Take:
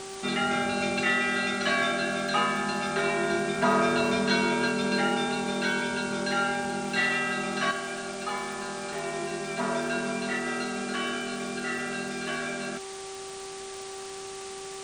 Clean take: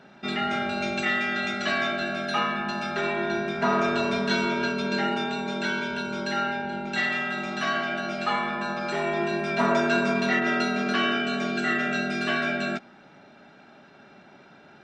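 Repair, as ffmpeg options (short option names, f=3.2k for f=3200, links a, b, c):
-af "adeclick=t=4,bandreject=f=387.5:t=h:w=4,bandreject=f=775:t=h:w=4,bandreject=f=1.1625k:t=h:w=4,afwtdn=0.01,asetnsamples=n=441:p=0,asendcmd='7.71 volume volume 7dB',volume=0dB"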